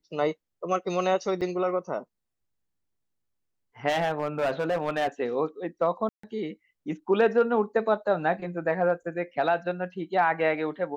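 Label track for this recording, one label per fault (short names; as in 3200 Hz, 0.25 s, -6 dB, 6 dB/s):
1.410000	1.420000	gap 6.3 ms
3.880000	5.080000	clipped -21.5 dBFS
6.090000	6.230000	gap 0.144 s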